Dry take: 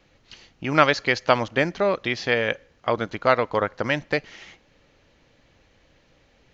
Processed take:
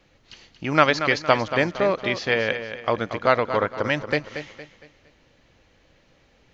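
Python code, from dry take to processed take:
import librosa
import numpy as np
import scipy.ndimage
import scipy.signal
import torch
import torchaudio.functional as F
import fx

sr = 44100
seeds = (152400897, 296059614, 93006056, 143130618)

y = fx.echo_feedback(x, sr, ms=231, feedback_pct=38, wet_db=-10.0)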